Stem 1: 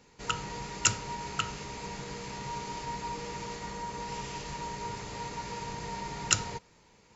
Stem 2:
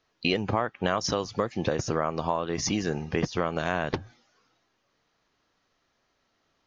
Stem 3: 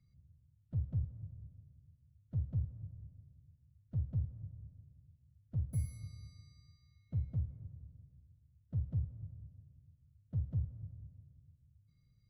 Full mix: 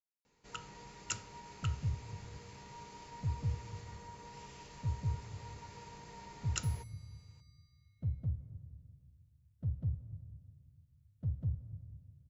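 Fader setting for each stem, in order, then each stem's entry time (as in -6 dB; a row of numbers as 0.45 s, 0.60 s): -13.5 dB, mute, 0.0 dB; 0.25 s, mute, 0.90 s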